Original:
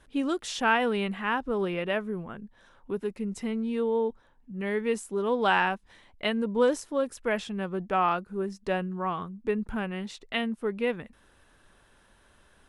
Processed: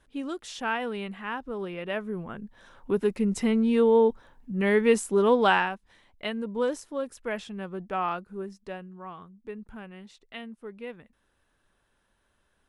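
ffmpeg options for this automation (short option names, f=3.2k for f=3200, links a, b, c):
-af "volume=7dB,afade=t=in:st=1.77:d=1.34:silence=0.237137,afade=t=out:st=5.24:d=0.45:silence=0.281838,afade=t=out:st=8.34:d=0.45:silence=0.446684"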